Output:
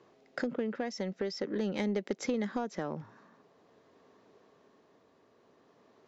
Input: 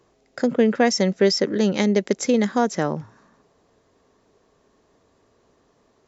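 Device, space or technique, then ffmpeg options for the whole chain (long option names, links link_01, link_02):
AM radio: -af "highpass=150,lowpass=4300,acompressor=threshold=-27dB:ratio=10,asoftclip=type=tanh:threshold=-20dB,tremolo=f=0.48:d=0.31"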